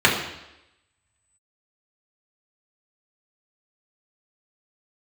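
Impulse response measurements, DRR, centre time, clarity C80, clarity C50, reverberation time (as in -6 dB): -4.5 dB, 36 ms, 8.0 dB, 5.5 dB, 0.90 s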